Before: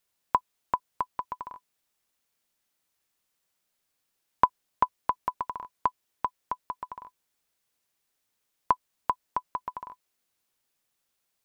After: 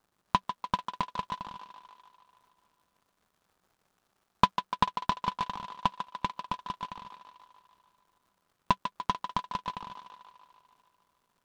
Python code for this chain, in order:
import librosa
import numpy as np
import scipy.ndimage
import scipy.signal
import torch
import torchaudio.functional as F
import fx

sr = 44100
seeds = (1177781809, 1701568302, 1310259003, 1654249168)

p1 = fx.curve_eq(x, sr, hz=(130.0, 190.0, 340.0), db=(0, 8, -11))
p2 = fx.dmg_crackle(p1, sr, seeds[0], per_s=280.0, level_db=-61.0)
p3 = fx.high_shelf_res(p2, sr, hz=1700.0, db=-6.5, q=1.5)
p4 = p3 + fx.echo_thinned(p3, sr, ms=147, feedback_pct=69, hz=340.0, wet_db=-8.5, dry=0)
p5 = fx.noise_mod_delay(p4, sr, seeds[1], noise_hz=2100.0, depth_ms=0.046)
y = p5 * librosa.db_to_amplitude(7.5)